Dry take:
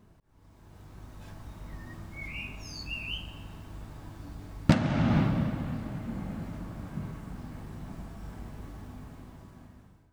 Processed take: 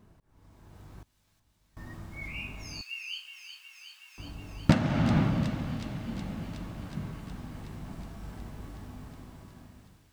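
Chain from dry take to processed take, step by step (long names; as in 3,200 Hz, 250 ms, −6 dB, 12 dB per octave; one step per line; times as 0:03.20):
0:01.02–0:01.77: gate with flip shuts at −41 dBFS, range −27 dB
0:02.81–0:04.18: Bessel high-pass filter 2,200 Hz, order 4
delay with a high-pass on its return 368 ms, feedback 77%, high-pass 2,900 Hz, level −7 dB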